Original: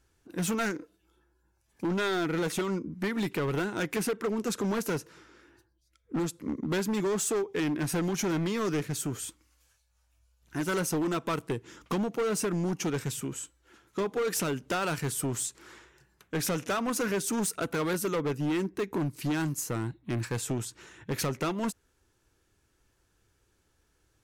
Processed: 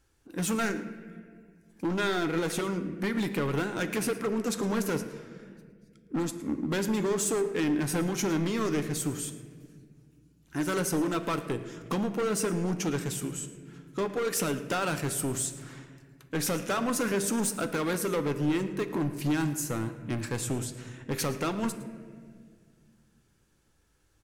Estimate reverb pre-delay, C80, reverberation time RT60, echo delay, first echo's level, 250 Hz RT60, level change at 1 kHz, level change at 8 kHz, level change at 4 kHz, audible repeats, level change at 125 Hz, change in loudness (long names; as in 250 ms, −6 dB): 4 ms, 12.0 dB, 1.9 s, 111 ms, −18.0 dB, 2.9 s, +0.5 dB, +1.0 dB, +0.5 dB, 1, +0.5 dB, +1.0 dB